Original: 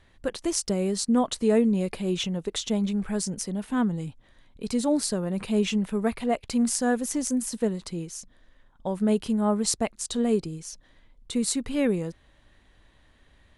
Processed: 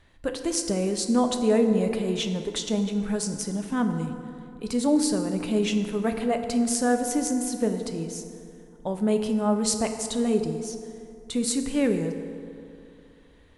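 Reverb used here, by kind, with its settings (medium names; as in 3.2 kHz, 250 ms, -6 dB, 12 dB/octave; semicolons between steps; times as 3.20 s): FDN reverb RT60 2.6 s, high-frequency decay 0.5×, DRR 5.5 dB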